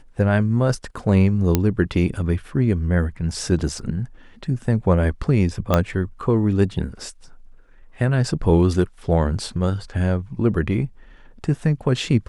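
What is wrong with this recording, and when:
1.55 s: pop -3 dBFS
3.79 s: dropout 2 ms
5.74 s: pop -4 dBFS

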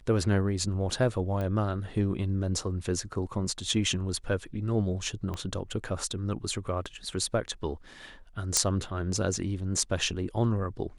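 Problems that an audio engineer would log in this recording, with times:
1.41 s: pop -22 dBFS
5.34 s: pop -22 dBFS
8.57 s: pop -7 dBFS

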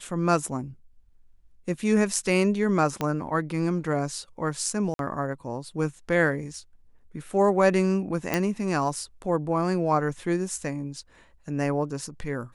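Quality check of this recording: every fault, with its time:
3.01 s: pop -13 dBFS
4.94–4.99 s: dropout 52 ms
8.34 s: pop -9 dBFS

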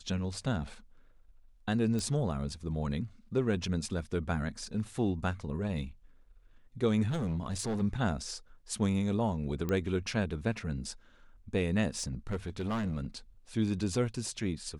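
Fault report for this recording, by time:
1.99 s: pop
7.09–7.82 s: clipped -29 dBFS
9.69 s: pop -20 dBFS
11.89–13.06 s: clipped -29.5 dBFS

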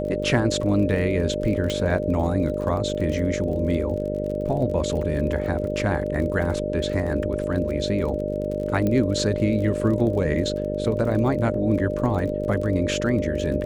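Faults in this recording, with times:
buzz 50 Hz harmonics 11 -29 dBFS
crackle 35 per s -31 dBFS
whine 600 Hz -27 dBFS
1.70 s: pop -14 dBFS
8.87 s: pop -13 dBFS

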